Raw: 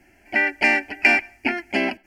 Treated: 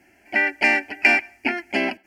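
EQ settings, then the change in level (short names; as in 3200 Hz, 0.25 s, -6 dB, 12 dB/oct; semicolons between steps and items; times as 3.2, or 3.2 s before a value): HPF 150 Hz 6 dB/oct; 0.0 dB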